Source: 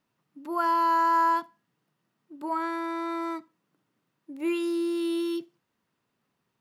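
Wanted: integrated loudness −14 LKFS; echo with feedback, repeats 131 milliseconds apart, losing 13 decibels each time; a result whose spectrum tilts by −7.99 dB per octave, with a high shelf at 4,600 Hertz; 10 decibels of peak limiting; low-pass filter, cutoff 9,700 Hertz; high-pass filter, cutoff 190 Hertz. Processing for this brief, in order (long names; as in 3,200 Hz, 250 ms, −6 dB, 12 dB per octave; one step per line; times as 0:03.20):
high-pass filter 190 Hz
low-pass filter 9,700 Hz
high-shelf EQ 4,600 Hz −8.5 dB
brickwall limiter −25 dBFS
repeating echo 131 ms, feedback 22%, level −13 dB
level +19 dB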